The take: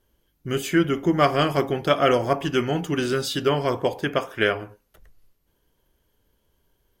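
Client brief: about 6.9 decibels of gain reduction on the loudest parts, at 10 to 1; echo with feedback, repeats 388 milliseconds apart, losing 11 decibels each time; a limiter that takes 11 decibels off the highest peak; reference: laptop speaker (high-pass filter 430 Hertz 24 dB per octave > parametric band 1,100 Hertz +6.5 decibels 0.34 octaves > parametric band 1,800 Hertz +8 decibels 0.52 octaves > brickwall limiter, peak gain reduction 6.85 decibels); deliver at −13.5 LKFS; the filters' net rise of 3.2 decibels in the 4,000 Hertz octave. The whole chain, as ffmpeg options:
ffmpeg -i in.wav -af "equalizer=frequency=4000:width_type=o:gain=3.5,acompressor=threshold=-20dB:ratio=10,alimiter=limit=-21dB:level=0:latency=1,highpass=frequency=430:width=0.5412,highpass=frequency=430:width=1.3066,equalizer=frequency=1100:width_type=o:width=0.34:gain=6.5,equalizer=frequency=1800:width_type=o:width=0.52:gain=8,aecho=1:1:388|776|1164:0.282|0.0789|0.0221,volume=20dB,alimiter=limit=-3dB:level=0:latency=1" out.wav

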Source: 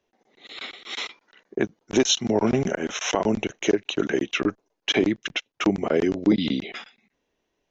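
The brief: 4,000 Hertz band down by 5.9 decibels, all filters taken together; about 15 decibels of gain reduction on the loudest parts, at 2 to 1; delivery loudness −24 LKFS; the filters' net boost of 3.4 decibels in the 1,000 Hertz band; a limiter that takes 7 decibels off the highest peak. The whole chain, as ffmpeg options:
ffmpeg -i in.wav -af "equalizer=frequency=1000:width_type=o:gain=5,equalizer=frequency=4000:width_type=o:gain=-8.5,acompressor=threshold=-43dB:ratio=2,volume=15.5dB,alimiter=limit=-10.5dB:level=0:latency=1" out.wav

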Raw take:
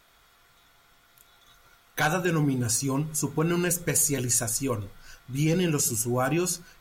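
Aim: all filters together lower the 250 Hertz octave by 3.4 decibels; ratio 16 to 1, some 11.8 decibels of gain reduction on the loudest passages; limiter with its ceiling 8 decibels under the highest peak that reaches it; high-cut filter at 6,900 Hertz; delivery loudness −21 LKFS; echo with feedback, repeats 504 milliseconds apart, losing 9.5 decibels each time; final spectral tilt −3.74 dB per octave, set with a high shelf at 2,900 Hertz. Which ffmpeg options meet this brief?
ffmpeg -i in.wav -af "lowpass=6900,equalizer=frequency=250:width_type=o:gain=-5.5,highshelf=frequency=2900:gain=8,acompressor=threshold=-29dB:ratio=16,alimiter=level_in=1dB:limit=-24dB:level=0:latency=1,volume=-1dB,aecho=1:1:504|1008|1512|2016:0.335|0.111|0.0365|0.012,volume=13dB" out.wav

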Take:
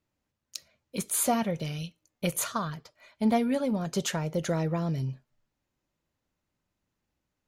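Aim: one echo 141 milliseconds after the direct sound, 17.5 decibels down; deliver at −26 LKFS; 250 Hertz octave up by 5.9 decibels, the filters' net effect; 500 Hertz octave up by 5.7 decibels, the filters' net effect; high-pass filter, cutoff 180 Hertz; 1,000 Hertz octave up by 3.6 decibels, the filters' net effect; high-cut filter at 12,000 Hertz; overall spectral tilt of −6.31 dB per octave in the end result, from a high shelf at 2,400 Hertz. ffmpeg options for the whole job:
ffmpeg -i in.wav -af "highpass=180,lowpass=12000,equalizer=frequency=250:width_type=o:gain=8,equalizer=frequency=500:width_type=o:gain=4.5,equalizer=frequency=1000:width_type=o:gain=3,highshelf=frequency=2400:gain=-5.5,aecho=1:1:141:0.133,volume=-0.5dB" out.wav

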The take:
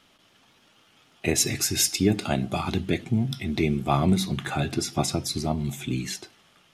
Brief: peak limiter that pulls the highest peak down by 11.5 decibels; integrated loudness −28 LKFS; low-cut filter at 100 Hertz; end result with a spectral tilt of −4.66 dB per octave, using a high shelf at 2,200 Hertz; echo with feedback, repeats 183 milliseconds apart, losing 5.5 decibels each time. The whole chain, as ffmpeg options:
ffmpeg -i in.wav -af "highpass=100,highshelf=frequency=2200:gain=-4.5,alimiter=limit=-20.5dB:level=0:latency=1,aecho=1:1:183|366|549|732|915|1098|1281:0.531|0.281|0.149|0.079|0.0419|0.0222|0.0118,volume=2dB" out.wav

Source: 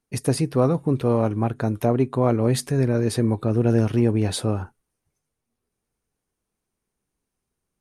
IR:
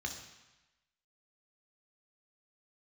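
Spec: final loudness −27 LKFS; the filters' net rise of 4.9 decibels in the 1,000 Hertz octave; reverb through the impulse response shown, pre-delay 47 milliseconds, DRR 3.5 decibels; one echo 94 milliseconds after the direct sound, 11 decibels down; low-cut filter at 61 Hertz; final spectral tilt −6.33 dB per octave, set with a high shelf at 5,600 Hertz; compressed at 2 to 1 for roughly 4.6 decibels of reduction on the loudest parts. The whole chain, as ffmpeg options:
-filter_complex "[0:a]highpass=61,equalizer=frequency=1000:width_type=o:gain=6.5,highshelf=frequency=5600:gain=4,acompressor=threshold=-21dB:ratio=2,aecho=1:1:94:0.282,asplit=2[link_01][link_02];[1:a]atrim=start_sample=2205,adelay=47[link_03];[link_02][link_03]afir=irnorm=-1:irlink=0,volume=-4.5dB[link_04];[link_01][link_04]amix=inputs=2:normalize=0,volume=-4dB"

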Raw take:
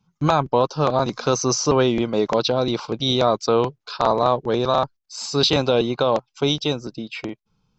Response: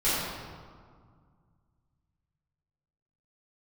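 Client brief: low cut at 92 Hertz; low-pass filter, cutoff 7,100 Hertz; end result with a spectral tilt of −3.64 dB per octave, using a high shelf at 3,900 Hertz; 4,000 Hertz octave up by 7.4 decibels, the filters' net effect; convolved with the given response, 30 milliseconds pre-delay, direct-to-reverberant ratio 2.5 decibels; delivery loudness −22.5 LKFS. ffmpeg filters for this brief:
-filter_complex "[0:a]highpass=92,lowpass=7100,highshelf=frequency=3900:gain=7.5,equalizer=frequency=4000:width_type=o:gain=4.5,asplit=2[link_01][link_02];[1:a]atrim=start_sample=2205,adelay=30[link_03];[link_02][link_03]afir=irnorm=-1:irlink=0,volume=-15.5dB[link_04];[link_01][link_04]amix=inputs=2:normalize=0,volume=-6dB"

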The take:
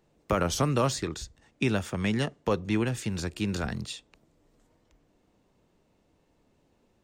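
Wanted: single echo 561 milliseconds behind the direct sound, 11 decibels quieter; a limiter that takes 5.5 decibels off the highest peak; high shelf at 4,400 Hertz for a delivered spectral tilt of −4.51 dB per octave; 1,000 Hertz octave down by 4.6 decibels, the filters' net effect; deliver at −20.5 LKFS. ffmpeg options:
ffmpeg -i in.wav -af "equalizer=frequency=1000:width_type=o:gain=-6.5,highshelf=frequency=4400:gain=5.5,alimiter=limit=-20dB:level=0:latency=1,aecho=1:1:561:0.282,volume=11dB" out.wav

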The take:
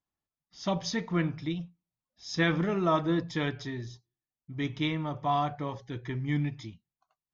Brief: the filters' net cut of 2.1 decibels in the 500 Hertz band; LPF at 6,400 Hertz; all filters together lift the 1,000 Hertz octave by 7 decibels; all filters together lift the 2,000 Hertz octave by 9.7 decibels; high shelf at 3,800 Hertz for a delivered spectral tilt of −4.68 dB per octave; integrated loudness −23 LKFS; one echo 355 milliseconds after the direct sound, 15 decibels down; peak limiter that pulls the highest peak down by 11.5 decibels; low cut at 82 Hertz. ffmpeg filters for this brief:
ffmpeg -i in.wav -af "highpass=82,lowpass=6400,equalizer=frequency=500:width_type=o:gain=-7.5,equalizer=frequency=1000:width_type=o:gain=8.5,equalizer=frequency=2000:width_type=o:gain=7.5,highshelf=frequency=3800:gain=8,alimiter=limit=-18.5dB:level=0:latency=1,aecho=1:1:355:0.178,volume=7.5dB" out.wav

